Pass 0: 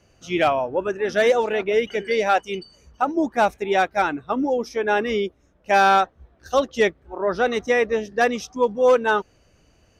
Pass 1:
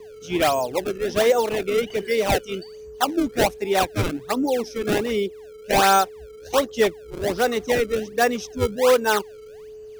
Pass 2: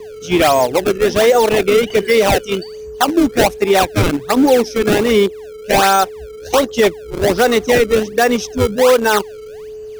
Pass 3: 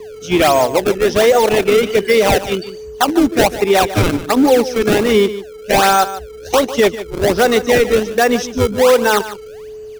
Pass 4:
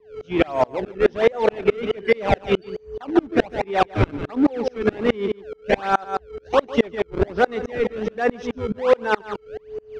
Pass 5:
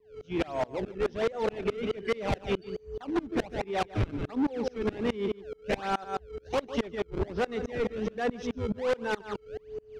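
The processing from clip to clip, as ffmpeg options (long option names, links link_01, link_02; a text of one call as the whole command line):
ffmpeg -i in.wav -filter_complex "[0:a]aeval=exprs='val(0)+0.0141*sin(2*PI*430*n/s)':channel_layout=same,acrossover=split=130|550|2000[link_01][link_02][link_03][link_04];[link_03]acrusher=samples=28:mix=1:aa=0.000001:lfo=1:lforange=44.8:lforate=1.3[link_05];[link_01][link_02][link_05][link_04]amix=inputs=4:normalize=0" out.wav
ffmpeg -i in.wav -filter_complex "[0:a]asplit=2[link_01][link_02];[link_02]aeval=exprs='val(0)*gte(abs(val(0)),0.0708)':channel_layout=same,volume=-10dB[link_03];[link_01][link_03]amix=inputs=2:normalize=0,alimiter=level_in=12dB:limit=-1dB:release=50:level=0:latency=1,volume=-2.5dB" out.wav
ffmpeg -i in.wav -af "aecho=1:1:148:0.211" out.wav
ffmpeg -i in.wav -af "lowpass=2500,alimiter=limit=-10dB:level=0:latency=1:release=135,aeval=exprs='val(0)*pow(10,-32*if(lt(mod(-4.7*n/s,1),2*abs(-4.7)/1000),1-mod(-4.7*n/s,1)/(2*abs(-4.7)/1000),(mod(-4.7*n/s,1)-2*abs(-4.7)/1000)/(1-2*abs(-4.7)/1000))/20)':channel_layout=same,volume=6dB" out.wav
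ffmpeg -i in.wav -af "equalizer=frequency=990:width=0.32:gain=-7,dynaudnorm=framelen=160:gausssize=5:maxgain=4.5dB,asoftclip=type=tanh:threshold=-17.5dB,volume=-4.5dB" out.wav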